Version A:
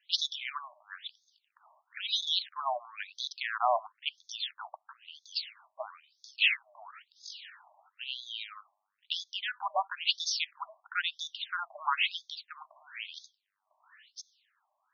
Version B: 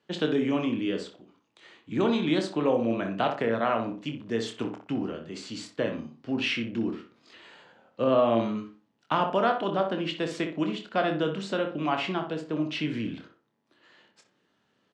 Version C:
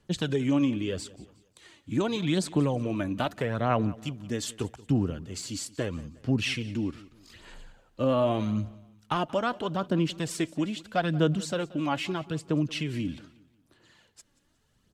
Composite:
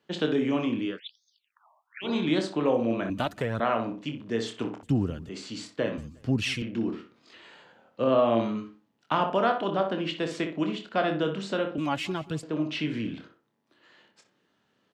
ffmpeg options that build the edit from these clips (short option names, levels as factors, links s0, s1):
-filter_complex "[2:a]asplit=4[s0][s1][s2][s3];[1:a]asplit=6[s4][s5][s6][s7][s8][s9];[s4]atrim=end=1[s10];[0:a]atrim=start=0.84:end=2.17[s11];[s5]atrim=start=2.01:end=3.102[s12];[s0]atrim=start=3.098:end=3.602[s13];[s6]atrim=start=3.598:end=4.832[s14];[s1]atrim=start=4.828:end=5.292[s15];[s7]atrim=start=5.288:end=5.982[s16];[s2]atrim=start=5.978:end=6.622[s17];[s8]atrim=start=6.618:end=11.782[s18];[s3]atrim=start=11.778:end=12.432[s19];[s9]atrim=start=12.428[s20];[s10][s11]acrossfade=d=0.16:c1=tri:c2=tri[s21];[s21][s12]acrossfade=d=0.16:c1=tri:c2=tri[s22];[s22][s13]acrossfade=d=0.004:c1=hsin:c2=hsin[s23];[s23][s14]acrossfade=d=0.004:c1=hsin:c2=hsin[s24];[s24][s15]acrossfade=d=0.004:c1=hsin:c2=hsin[s25];[s25][s16]acrossfade=d=0.004:c1=hsin:c2=hsin[s26];[s26][s17]acrossfade=d=0.004:c1=hsin:c2=hsin[s27];[s27][s18]acrossfade=d=0.004:c1=hsin:c2=hsin[s28];[s28][s19]acrossfade=d=0.004:c1=hsin:c2=hsin[s29];[s29][s20]acrossfade=d=0.004:c1=hsin:c2=hsin"